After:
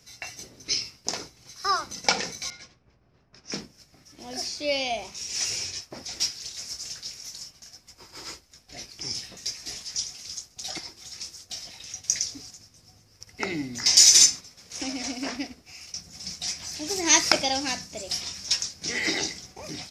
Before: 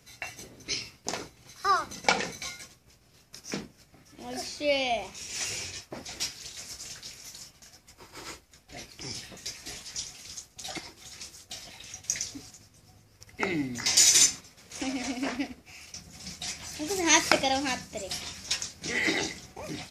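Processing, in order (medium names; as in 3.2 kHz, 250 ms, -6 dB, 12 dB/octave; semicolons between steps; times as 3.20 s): 2.50–3.64 s: level-controlled noise filter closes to 1.2 kHz, open at -34 dBFS; peaking EQ 5.3 kHz +9.5 dB 0.6 oct; trim -1 dB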